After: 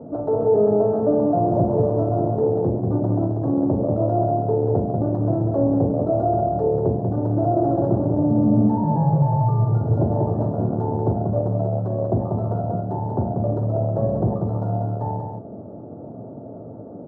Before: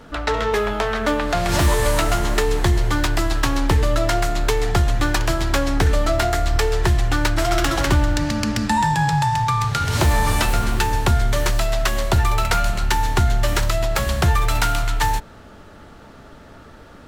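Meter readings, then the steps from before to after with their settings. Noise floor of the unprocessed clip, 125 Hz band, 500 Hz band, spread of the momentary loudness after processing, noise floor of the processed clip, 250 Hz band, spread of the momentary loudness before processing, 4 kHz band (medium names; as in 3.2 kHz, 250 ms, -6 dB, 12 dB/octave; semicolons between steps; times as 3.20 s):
-43 dBFS, +0.5 dB, +3.5 dB, 9 LU, -37 dBFS, +4.5 dB, 3 LU, under -40 dB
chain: saturation -21.5 dBFS, distortion -9 dB; elliptic band-pass 110–670 Hz, stop band 50 dB; multi-tap echo 43/190 ms -9.5/-4.5 dB; trim +8.5 dB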